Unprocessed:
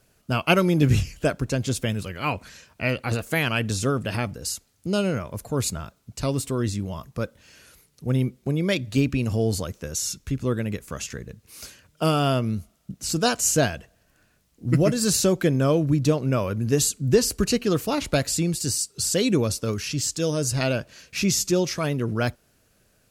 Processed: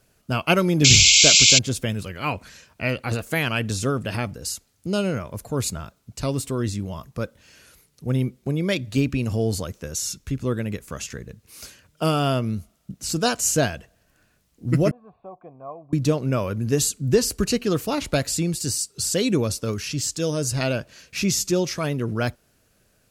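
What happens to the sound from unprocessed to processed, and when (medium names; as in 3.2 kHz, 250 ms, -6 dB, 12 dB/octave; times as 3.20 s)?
0.84–1.59 s: painted sound noise 2.1–7.7 kHz -14 dBFS
14.91–15.93 s: cascade formant filter a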